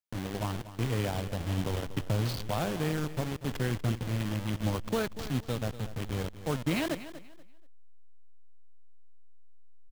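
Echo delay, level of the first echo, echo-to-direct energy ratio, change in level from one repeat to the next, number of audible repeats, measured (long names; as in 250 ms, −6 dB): 240 ms, −14.0 dB, −13.5 dB, −12.0 dB, 2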